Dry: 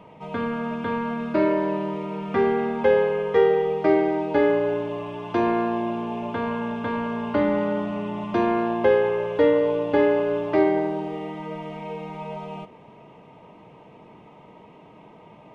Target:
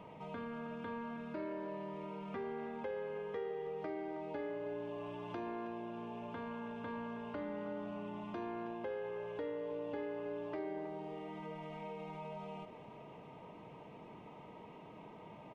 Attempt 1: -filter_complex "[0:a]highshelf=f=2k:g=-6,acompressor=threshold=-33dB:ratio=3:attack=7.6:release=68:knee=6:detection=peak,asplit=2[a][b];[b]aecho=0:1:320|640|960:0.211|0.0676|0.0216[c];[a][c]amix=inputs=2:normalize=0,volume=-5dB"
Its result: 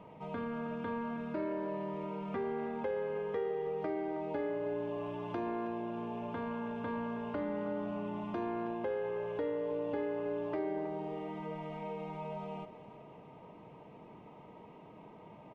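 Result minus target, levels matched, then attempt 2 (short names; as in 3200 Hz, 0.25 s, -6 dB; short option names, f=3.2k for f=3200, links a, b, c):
compressor: peak gain reduction -6 dB; 4000 Hz band -5.0 dB
-filter_complex "[0:a]acompressor=threshold=-41.5dB:ratio=3:attack=7.6:release=68:knee=6:detection=peak,asplit=2[a][b];[b]aecho=0:1:320|640|960:0.211|0.0676|0.0216[c];[a][c]amix=inputs=2:normalize=0,volume=-5dB"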